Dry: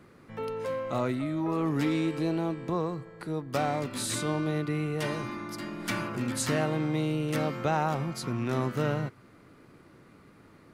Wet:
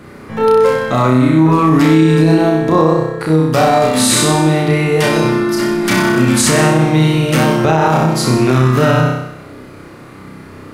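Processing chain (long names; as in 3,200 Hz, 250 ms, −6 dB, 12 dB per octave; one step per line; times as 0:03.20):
on a send: flutter between parallel walls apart 5.4 metres, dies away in 0.83 s
on the sum: boost into a limiter +17.5 dB
level −1 dB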